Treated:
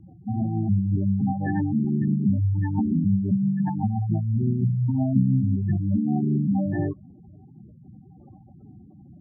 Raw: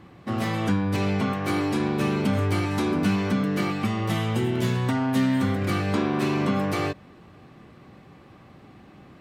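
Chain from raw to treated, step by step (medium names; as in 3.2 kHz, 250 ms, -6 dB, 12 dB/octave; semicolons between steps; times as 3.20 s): formant shift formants -5 st; spectral gate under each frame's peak -10 dB strong; rotary cabinet horn 6.7 Hz, later 1 Hz, at 5.01 s; trim +4 dB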